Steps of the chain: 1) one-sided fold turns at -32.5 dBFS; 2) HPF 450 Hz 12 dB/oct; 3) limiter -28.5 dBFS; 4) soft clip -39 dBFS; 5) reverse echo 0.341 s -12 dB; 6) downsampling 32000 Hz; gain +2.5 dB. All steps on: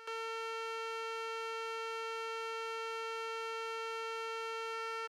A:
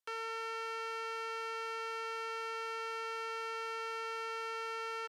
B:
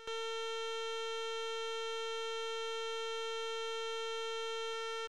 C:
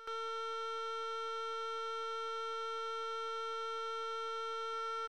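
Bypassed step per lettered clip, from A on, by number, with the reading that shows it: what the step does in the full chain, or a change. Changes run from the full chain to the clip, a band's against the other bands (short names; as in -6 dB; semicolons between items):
5, crest factor change -2.0 dB; 2, 1 kHz band -6.5 dB; 1, distortion 0 dB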